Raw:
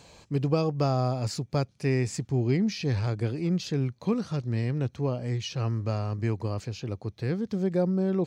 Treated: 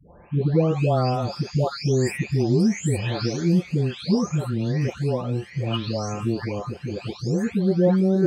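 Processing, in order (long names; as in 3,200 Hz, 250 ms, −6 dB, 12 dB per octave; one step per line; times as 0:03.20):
every frequency bin delayed by itself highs late, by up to 795 ms
level +7.5 dB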